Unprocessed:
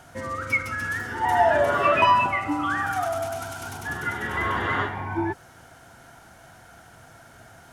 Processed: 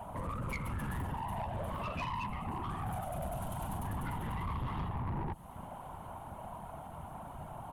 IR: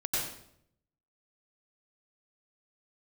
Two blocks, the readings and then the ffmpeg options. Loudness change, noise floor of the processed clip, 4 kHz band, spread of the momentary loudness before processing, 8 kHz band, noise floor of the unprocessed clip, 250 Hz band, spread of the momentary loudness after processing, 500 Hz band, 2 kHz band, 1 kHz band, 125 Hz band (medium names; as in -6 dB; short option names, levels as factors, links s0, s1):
-16.0 dB, -48 dBFS, -16.5 dB, 13 LU, -11.5 dB, -50 dBFS, -9.5 dB, 9 LU, -18.5 dB, -21.5 dB, -15.5 dB, -2.0 dB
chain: -filter_complex "[0:a]firequalizer=gain_entry='entry(100,0);entry(300,-8);entry(480,-8);entry(1000,6);entry(1500,-21);entry(2800,-11);entry(5200,-30);entry(10000,-10)':delay=0.05:min_phase=1,asplit=2[s0][s1];[s1]alimiter=level_in=1.33:limit=0.0631:level=0:latency=1:release=174,volume=0.75,volume=1.12[s2];[s0][s2]amix=inputs=2:normalize=0,acrossover=split=180|3000[s3][s4][s5];[s4]acompressor=threshold=0.0112:ratio=6[s6];[s3][s6][s5]amix=inputs=3:normalize=0,afftfilt=real='hypot(re,im)*cos(2*PI*random(0))':imag='hypot(re,im)*sin(2*PI*random(1))':win_size=512:overlap=0.75,asoftclip=type=tanh:threshold=0.0112,aecho=1:1:1153:0.0631,volume=2.11"